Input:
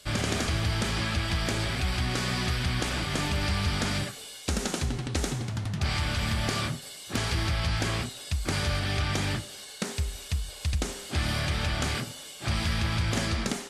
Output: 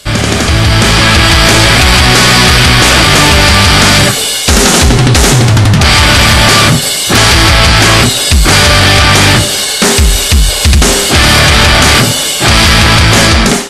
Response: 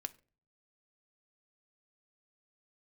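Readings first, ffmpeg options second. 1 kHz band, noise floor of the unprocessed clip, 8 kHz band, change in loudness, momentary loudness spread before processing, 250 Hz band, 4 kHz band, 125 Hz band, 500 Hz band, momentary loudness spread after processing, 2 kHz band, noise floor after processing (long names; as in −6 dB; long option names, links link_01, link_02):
+25.5 dB, −44 dBFS, +27.5 dB, +24.5 dB, 6 LU, +22.0 dB, +26.5 dB, +21.0 dB, +24.0 dB, 4 LU, +26.0 dB, −12 dBFS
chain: -af "dynaudnorm=framelen=400:gausssize=5:maxgain=14.5dB,apsyclip=19.5dB,volume=-1.5dB"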